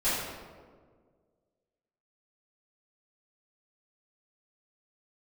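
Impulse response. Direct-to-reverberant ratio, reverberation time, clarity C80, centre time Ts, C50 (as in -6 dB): -16.0 dB, 1.7 s, 1.0 dB, 98 ms, -1.5 dB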